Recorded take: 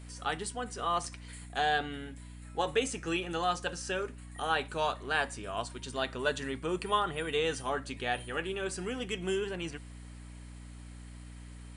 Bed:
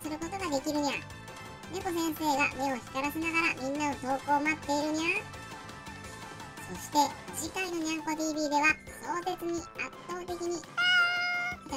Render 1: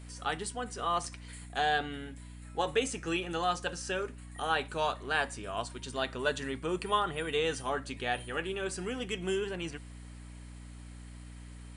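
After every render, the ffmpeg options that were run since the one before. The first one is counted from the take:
-af anull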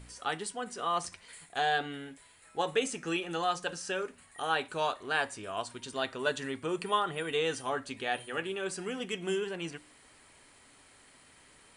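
-af "bandreject=f=60:t=h:w=4,bandreject=f=120:t=h:w=4,bandreject=f=180:t=h:w=4,bandreject=f=240:t=h:w=4,bandreject=f=300:t=h:w=4"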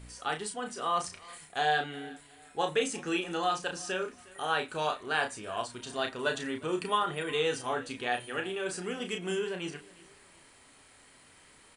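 -filter_complex "[0:a]asplit=2[s0][s1];[s1]adelay=33,volume=0.501[s2];[s0][s2]amix=inputs=2:normalize=0,aecho=1:1:360|720:0.0794|0.0262"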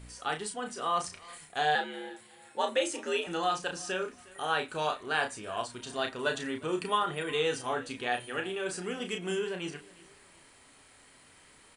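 -filter_complex "[0:a]asettb=1/sr,asplit=3[s0][s1][s2];[s0]atrim=end=1.754[s3];[s1]atrim=start=1.75:end=3.27,asetpts=PTS-STARTPTS,afade=t=in:d=0.004:c=qsin,afade=t=out:st=1.516:d=0.004:c=qsin,afreqshift=72[s4];[s2]atrim=start=3.266[s5];[s3][s4]acrossfade=d=0.004:c1=hsin:c2=qsin[s6];[s6][s5]acrossfade=d=0.004:c1=qsin:c2=hsin"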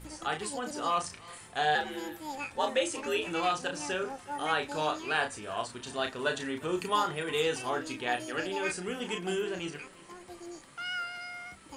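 -filter_complex "[1:a]volume=0.282[s0];[0:a][s0]amix=inputs=2:normalize=0"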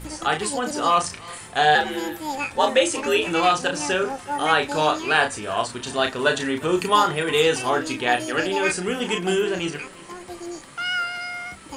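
-af "volume=3.35"

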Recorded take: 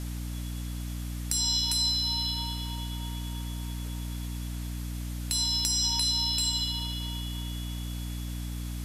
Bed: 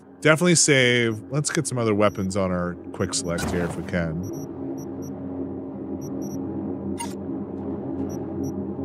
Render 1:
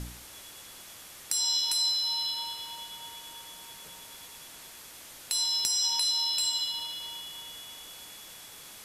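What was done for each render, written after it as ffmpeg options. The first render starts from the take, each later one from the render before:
-af "bandreject=f=60:t=h:w=4,bandreject=f=120:t=h:w=4,bandreject=f=180:t=h:w=4,bandreject=f=240:t=h:w=4,bandreject=f=300:t=h:w=4,bandreject=f=360:t=h:w=4,bandreject=f=420:t=h:w=4"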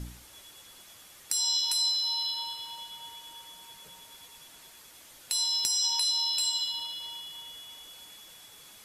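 -af "afftdn=nr=6:nf=-48"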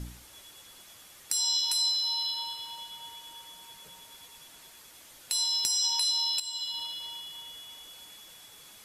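-filter_complex "[0:a]asplit=2[s0][s1];[s0]atrim=end=6.4,asetpts=PTS-STARTPTS,afade=t=out:st=6.396:d=0.004:c=hsin:silence=0.237137[s2];[s1]atrim=start=6.4,asetpts=PTS-STARTPTS,afade=t=in:d=0.42:silence=0.237137[s3];[s2][s3]concat=n=2:v=0:a=1"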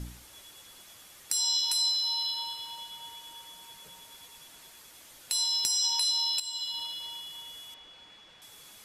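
-filter_complex "[0:a]asettb=1/sr,asplit=3[s0][s1][s2];[s0]atrim=end=7.744[s3];[s1]atrim=start=7.74:end=8.42,asetpts=PTS-STARTPTS,afade=t=in:d=0.004:c=qsin,afade=t=out:st=0.676:d=0.004:c=qsin,lowpass=3400[s4];[s2]atrim=start=8.416[s5];[s3][s4]acrossfade=d=0.004:c1=hsin:c2=qsin[s6];[s6][s5]acrossfade=d=0.004:c1=qsin:c2=hsin"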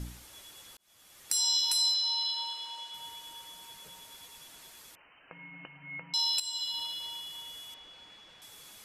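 -filter_complex "[0:a]asettb=1/sr,asplit=3[s0][s1][s2];[s0]atrim=end=1.944[s3];[s1]atrim=start=1.94:end=2.94,asetpts=PTS-STARTPTS,afade=t=in:d=0.004:c=qsin,afade=t=out:st=0.996:d=0.004:c=qsin,highpass=350,lowpass=7400[s4];[s2]atrim=start=2.936[s5];[s3][s4]acrossfade=d=0.004:c1=hsin:c2=qsin[s6];[s6][s5]acrossfade=d=0.004:c1=qsin:c2=hsin,asettb=1/sr,asplit=3[s7][s8][s9];[s7]atrim=end=4.954[s10];[s8]atrim=start=4.95:end=6.14,asetpts=PTS-STARTPTS,afade=t=in:d=0.004:c=qsin,afade=t=out:st=1.186:d=0.004:c=qsin,lowpass=f=2600:t=q:w=0.5098,lowpass=f=2600:t=q:w=0.6013,lowpass=f=2600:t=q:w=0.9,lowpass=f=2600:t=q:w=2.563,afreqshift=-3100[s11];[s9]atrim=start=6.136[s12];[s10][s11]acrossfade=d=0.004:c1=hsin:c2=qsin[s13];[s13][s12]acrossfade=d=0.004:c1=qsin:c2=hsin,asplit=2[s14][s15];[s14]atrim=end=0.77,asetpts=PTS-STARTPTS,afade=t=out:st=0.766:d=0.004:c=hsin[s16];[s15]atrim=start=0.77,asetpts=PTS-STARTPTS,afade=t=in:d=0.57[s17];[s16][s17]concat=n=2:v=0:a=1"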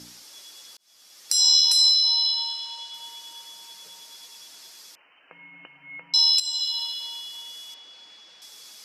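-af "highpass=240,equalizer=f=5100:t=o:w=0.85:g=13"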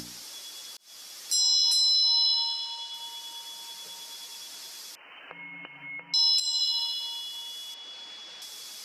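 -af "alimiter=limit=0.168:level=0:latency=1:release=14,acompressor=mode=upward:threshold=0.0158:ratio=2.5"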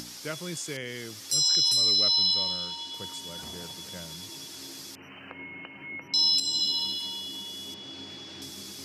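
-filter_complex "[1:a]volume=0.112[s0];[0:a][s0]amix=inputs=2:normalize=0"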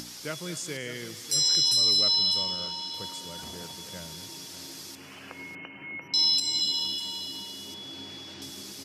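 -af "aecho=1:1:198|237|598:0.133|0.141|0.211"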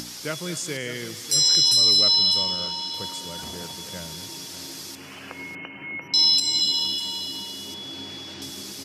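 -af "volume=1.78"

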